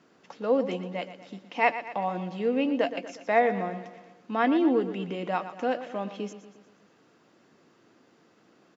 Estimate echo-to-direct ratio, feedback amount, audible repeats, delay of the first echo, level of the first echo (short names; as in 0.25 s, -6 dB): -11.0 dB, 54%, 5, 0.119 s, -12.5 dB